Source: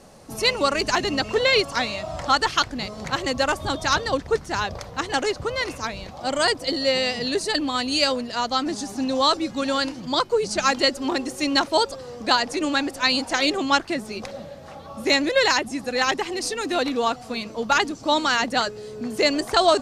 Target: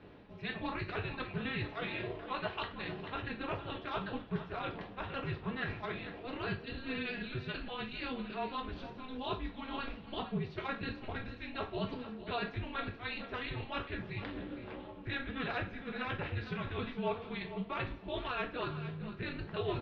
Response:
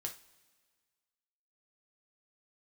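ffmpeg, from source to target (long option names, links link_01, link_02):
-filter_complex "[0:a]equalizer=frequency=1100:width_type=o:width=2:gain=-4,areverse,acompressor=threshold=-33dB:ratio=6,areverse,atempo=1,tremolo=f=240:d=0.824,aecho=1:1:456:0.237[link_01];[1:a]atrim=start_sample=2205[link_02];[link_01][link_02]afir=irnorm=-1:irlink=0,highpass=frequency=360:width_type=q:width=0.5412,highpass=frequency=360:width_type=q:width=1.307,lowpass=frequency=3400:width_type=q:width=0.5176,lowpass=frequency=3400:width_type=q:width=0.7071,lowpass=frequency=3400:width_type=q:width=1.932,afreqshift=-270,volume=4.5dB"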